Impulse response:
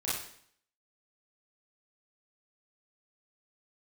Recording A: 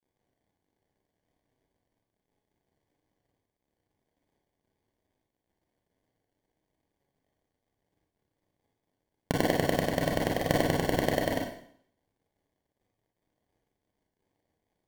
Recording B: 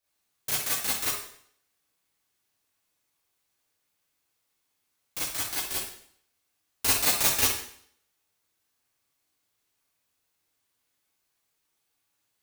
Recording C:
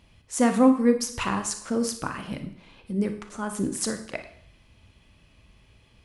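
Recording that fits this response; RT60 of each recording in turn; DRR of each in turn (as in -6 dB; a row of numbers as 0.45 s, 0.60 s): B; 0.60 s, 0.60 s, 0.60 s; -2.0 dB, -9.0 dB, 6.5 dB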